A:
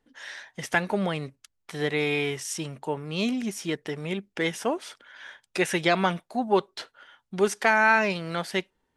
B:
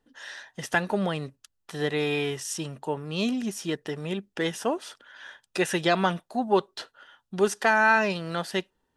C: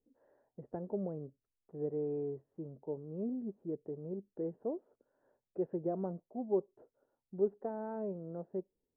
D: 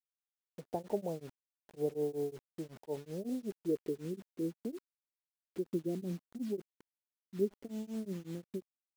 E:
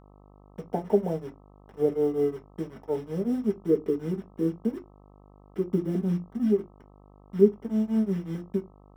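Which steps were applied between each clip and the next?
band-stop 2.2 kHz, Q 5.9
four-pole ladder low-pass 600 Hz, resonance 35%; trim -4.5 dB
low-pass sweep 850 Hz -> 280 Hz, 3.08–4.22 s; bit crusher 9-bit; tremolo of two beating tones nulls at 5.4 Hz; trim +1.5 dB
crossover distortion -58.5 dBFS; reverberation RT60 0.20 s, pre-delay 3 ms, DRR 3.5 dB; mains buzz 50 Hz, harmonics 26, -53 dBFS -4 dB/octave; trim -1 dB

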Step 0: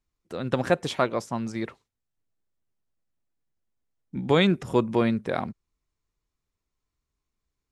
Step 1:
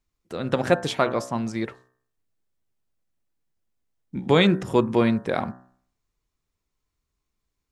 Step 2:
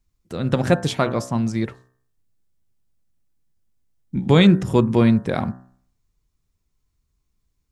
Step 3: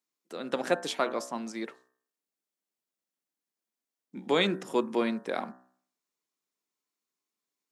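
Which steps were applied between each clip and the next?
de-hum 63.03 Hz, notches 30; trim +3 dB
tone controls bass +10 dB, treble +4 dB
Bessel high-pass 380 Hz, order 6; trim -6 dB

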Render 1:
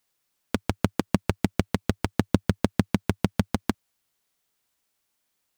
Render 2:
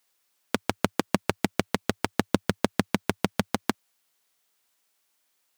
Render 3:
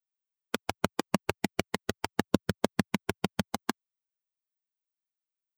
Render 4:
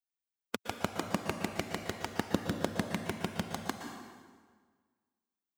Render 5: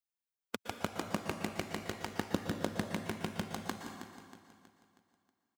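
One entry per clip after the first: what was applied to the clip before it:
high-pass 430 Hz 6 dB/octave; trim +4 dB
expander on every frequency bin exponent 2
plate-style reverb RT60 1.6 s, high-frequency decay 0.8×, pre-delay 105 ms, DRR 4 dB; trim -5 dB
feedback delay 319 ms, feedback 45%, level -11.5 dB; trim -3 dB

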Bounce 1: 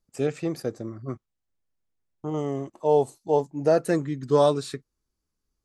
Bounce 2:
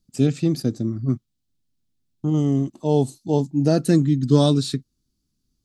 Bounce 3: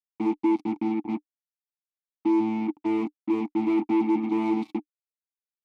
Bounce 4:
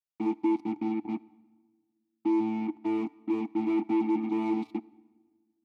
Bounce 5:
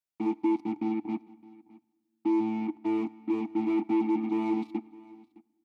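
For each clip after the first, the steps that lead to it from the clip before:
graphic EQ 125/250/500/1000/2000/4000 Hz +6/+9/-9/-8/-7/+6 dB; trim +5.5 dB
vocoder on a held chord bare fifth, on A3; fuzz box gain 35 dB, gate -35 dBFS; vowel filter u
comb of notches 520 Hz; on a send at -22 dB: reverberation RT60 1.4 s, pre-delay 43 ms; on the sum: trim -3.5 dB
delay 613 ms -22 dB

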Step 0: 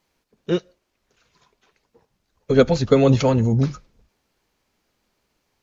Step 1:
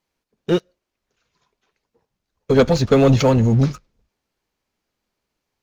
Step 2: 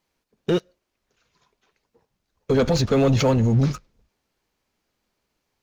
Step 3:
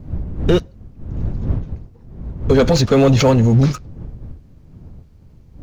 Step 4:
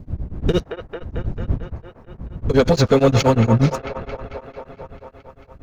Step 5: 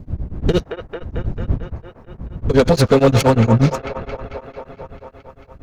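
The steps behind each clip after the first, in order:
waveshaping leveller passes 2; trim -3.5 dB
peak limiter -15 dBFS, peak gain reduction 9.5 dB; trim +2.5 dB
wind noise 110 Hz -32 dBFS; trim +6 dB
feedback echo behind a band-pass 222 ms, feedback 73%, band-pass 1.1 kHz, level -4 dB; tremolo of two beating tones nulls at 8.5 Hz
self-modulated delay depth 0.11 ms; trim +2 dB

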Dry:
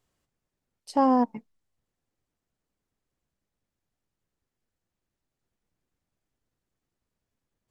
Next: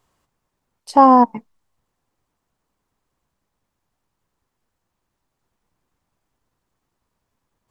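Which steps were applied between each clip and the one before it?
peaking EQ 1 kHz +8.5 dB 0.81 oct; trim +7.5 dB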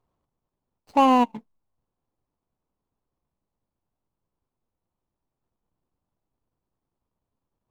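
median filter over 25 samples; trim -6 dB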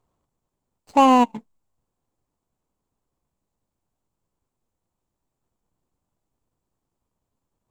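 peaking EQ 7.4 kHz +8 dB 0.42 oct; trim +3 dB

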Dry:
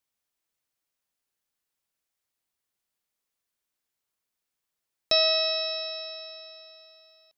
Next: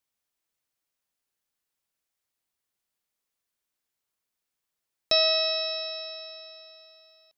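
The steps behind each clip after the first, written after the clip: no audible change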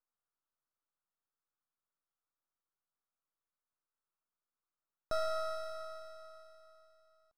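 partial rectifier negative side -12 dB; resonant high shelf 1.9 kHz -13 dB, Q 3; trim -6.5 dB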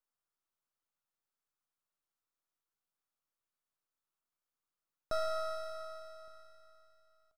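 echo from a far wall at 200 m, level -28 dB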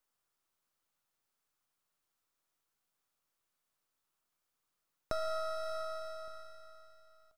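compression 3:1, threshold -42 dBFS, peak gain reduction 9.5 dB; trim +7 dB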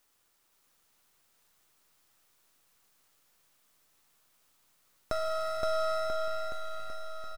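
companding laws mixed up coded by mu; bouncing-ball echo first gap 520 ms, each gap 0.9×, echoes 5; trim +2 dB

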